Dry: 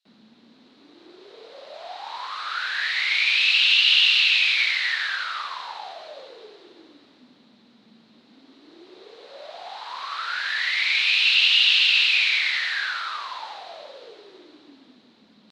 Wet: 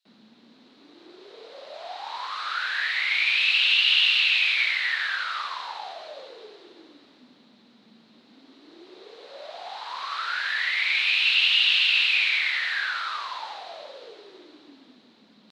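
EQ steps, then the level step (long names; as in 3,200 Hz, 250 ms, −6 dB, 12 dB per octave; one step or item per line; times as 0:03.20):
dynamic equaliser 5,600 Hz, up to −7 dB, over −35 dBFS, Q 0.95
high-pass filter 120 Hz 6 dB per octave
0.0 dB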